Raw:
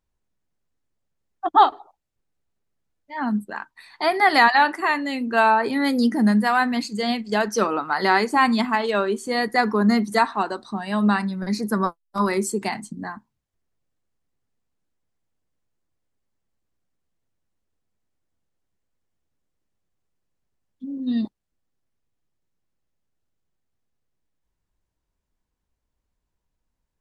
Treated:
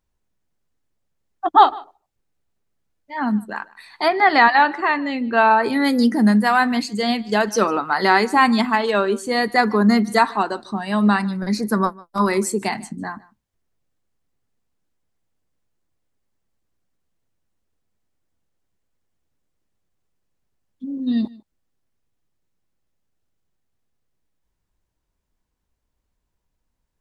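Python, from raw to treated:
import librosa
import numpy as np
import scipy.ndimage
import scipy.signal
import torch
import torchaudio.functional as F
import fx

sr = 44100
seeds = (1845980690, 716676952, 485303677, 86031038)

y = fx.air_absorb(x, sr, metres=150.0, at=(4.08, 5.51))
y = y + 10.0 ** (-22.5 / 20.0) * np.pad(y, (int(151 * sr / 1000.0), 0))[:len(y)]
y = y * 10.0 ** (3.0 / 20.0)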